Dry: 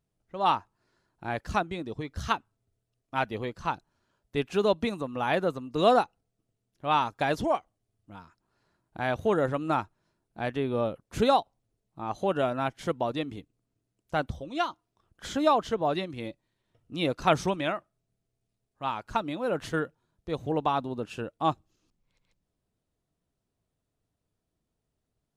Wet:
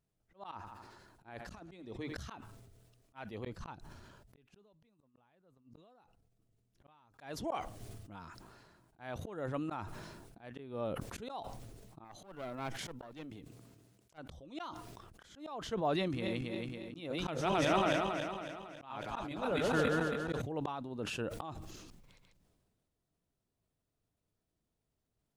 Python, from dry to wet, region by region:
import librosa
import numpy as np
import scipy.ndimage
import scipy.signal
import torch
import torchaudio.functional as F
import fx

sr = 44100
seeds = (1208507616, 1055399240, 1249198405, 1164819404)

y = fx.chain(x, sr, fx.notch(hz=150.0, q=5.0),
    fx.over_compress(threshold_db=-31.0, ratio=-0.5),
    fx.echo_feedback(ms=81, feedback_pct=60, wet_db=-21.0), at=(0.51, 2.23))
y = fx.chain(y, sr, fx.low_shelf(hz=170.0, db=8.5),
    fx.gate_flip(shuts_db=-21.0, range_db=-35), at=(3.44, 7.14))
y = fx.chain(y, sr, fx.block_float(bits=7),
    fx.highpass(hz=80.0, slope=12),
    fx.tube_stage(drive_db=23.0, bias=0.8), at=(12.04, 14.18))
y = fx.chain(y, sr, fx.reverse_delay_fb(ms=138, feedback_pct=69, wet_db=-1.5),
    fx.sustainer(db_per_s=37.0), at=(16.0, 20.42))
y = fx.auto_swell(y, sr, attack_ms=510.0)
y = fx.sustainer(y, sr, db_per_s=30.0)
y = y * librosa.db_to_amplitude(-4.0)